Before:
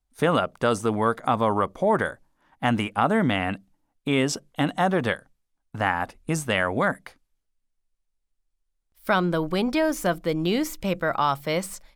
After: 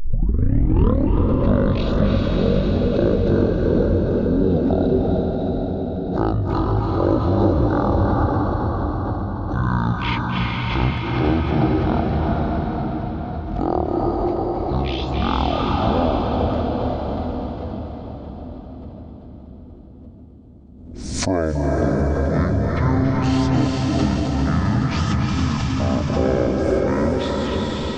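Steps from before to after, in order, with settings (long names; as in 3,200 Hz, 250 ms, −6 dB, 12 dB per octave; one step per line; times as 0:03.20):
turntable start at the beginning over 0.47 s
tape wow and flutter 72 cents
echo with a time of its own for lows and highs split 750 Hz, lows 518 ms, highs 119 ms, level −9.5 dB
convolution reverb RT60 2.5 s, pre-delay 113 ms, DRR −3 dB
wrong playback speed 78 rpm record played at 33 rpm
background raised ahead of every attack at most 45 dB per second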